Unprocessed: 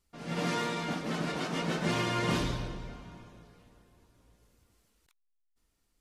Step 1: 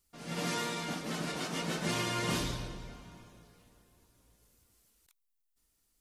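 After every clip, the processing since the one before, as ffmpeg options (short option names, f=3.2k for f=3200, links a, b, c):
-af "crystalizer=i=2:c=0,volume=-4dB"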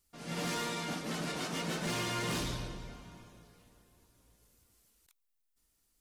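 -af "asoftclip=type=hard:threshold=-31dB"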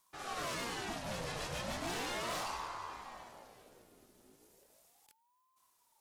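-af "acompressor=threshold=-44dB:ratio=2,aeval=exprs='val(0)*sin(2*PI*670*n/s+670*0.55/0.36*sin(2*PI*0.36*n/s))':c=same,volume=5dB"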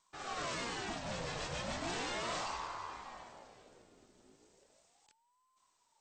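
-ar 32000 -c:a mp2 -b:a 64k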